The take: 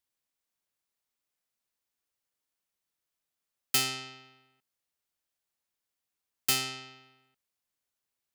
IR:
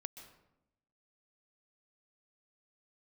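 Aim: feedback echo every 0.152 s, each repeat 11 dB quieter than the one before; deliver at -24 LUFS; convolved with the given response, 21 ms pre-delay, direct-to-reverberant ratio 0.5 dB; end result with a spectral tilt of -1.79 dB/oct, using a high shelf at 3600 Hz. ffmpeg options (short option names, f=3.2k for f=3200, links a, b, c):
-filter_complex "[0:a]highshelf=f=3.6k:g=-7,aecho=1:1:152|304|456:0.282|0.0789|0.0221,asplit=2[a][b];[1:a]atrim=start_sample=2205,adelay=21[c];[b][c]afir=irnorm=-1:irlink=0,volume=3dB[d];[a][d]amix=inputs=2:normalize=0,volume=7.5dB"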